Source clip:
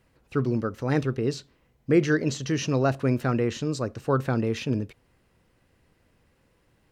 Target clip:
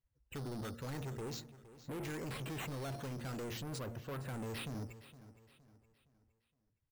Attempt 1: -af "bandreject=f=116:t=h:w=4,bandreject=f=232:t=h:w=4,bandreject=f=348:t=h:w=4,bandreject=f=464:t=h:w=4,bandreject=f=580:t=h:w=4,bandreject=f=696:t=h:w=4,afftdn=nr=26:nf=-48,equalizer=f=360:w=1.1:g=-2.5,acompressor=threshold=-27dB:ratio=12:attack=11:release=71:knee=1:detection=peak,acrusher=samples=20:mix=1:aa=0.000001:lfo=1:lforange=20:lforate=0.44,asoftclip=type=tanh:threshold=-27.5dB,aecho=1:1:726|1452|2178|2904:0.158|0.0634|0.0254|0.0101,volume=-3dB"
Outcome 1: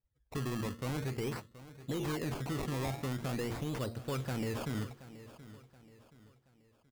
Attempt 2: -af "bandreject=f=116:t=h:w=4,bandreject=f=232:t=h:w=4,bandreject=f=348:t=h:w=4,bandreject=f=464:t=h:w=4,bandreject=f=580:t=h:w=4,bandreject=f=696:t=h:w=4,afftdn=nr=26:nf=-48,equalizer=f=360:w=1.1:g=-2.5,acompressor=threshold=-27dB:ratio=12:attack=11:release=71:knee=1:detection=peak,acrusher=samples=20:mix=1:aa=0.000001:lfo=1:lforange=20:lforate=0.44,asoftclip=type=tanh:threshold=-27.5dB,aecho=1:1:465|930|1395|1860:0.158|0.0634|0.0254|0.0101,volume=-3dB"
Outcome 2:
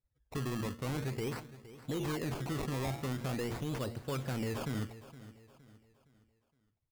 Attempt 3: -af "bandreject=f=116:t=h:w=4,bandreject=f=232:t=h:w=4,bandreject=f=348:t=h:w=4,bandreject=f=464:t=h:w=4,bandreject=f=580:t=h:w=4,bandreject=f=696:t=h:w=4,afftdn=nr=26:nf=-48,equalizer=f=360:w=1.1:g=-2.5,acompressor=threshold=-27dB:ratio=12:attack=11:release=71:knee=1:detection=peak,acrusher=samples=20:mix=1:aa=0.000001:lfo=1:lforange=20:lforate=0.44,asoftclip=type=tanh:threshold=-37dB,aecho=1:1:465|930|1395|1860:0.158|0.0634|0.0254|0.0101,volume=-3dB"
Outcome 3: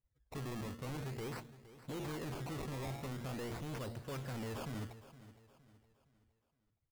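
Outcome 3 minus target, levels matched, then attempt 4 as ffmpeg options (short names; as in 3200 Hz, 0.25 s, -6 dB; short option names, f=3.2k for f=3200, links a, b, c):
decimation with a swept rate: distortion +7 dB
-af "bandreject=f=116:t=h:w=4,bandreject=f=232:t=h:w=4,bandreject=f=348:t=h:w=4,bandreject=f=464:t=h:w=4,bandreject=f=580:t=h:w=4,bandreject=f=696:t=h:w=4,afftdn=nr=26:nf=-48,equalizer=f=360:w=1.1:g=-2.5,acompressor=threshold=-27dB:ratio=12:attack=11:release=71:knee=1:detection=peak,acrusher=samples=6:mix=1:aa=0.000001:lfo=1:lforange=6:lforate=0.44,asoftclip=type=tanh:threshold=-37dB,aecho=1:1:465|930|1395|1860:0.158|0.0634|0.0254|0.0101,volume=-3dB"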